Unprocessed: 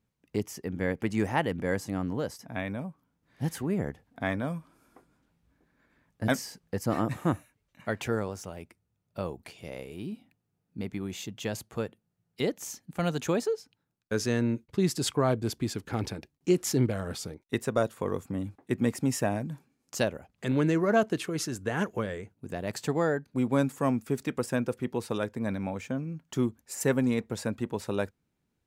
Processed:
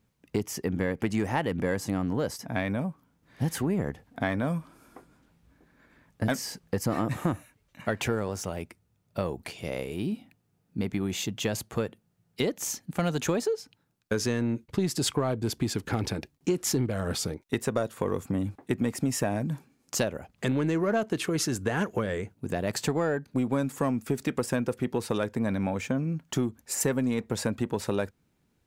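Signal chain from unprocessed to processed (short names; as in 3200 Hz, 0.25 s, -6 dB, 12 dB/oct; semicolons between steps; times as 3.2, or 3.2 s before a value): in parallel at -6 dB: soft clip -26 dBFS, distortion -9 dB; on the sum: compressor 5:1, threshold -28 dBFS, peak gain reduction 10 dB; gain +4 dB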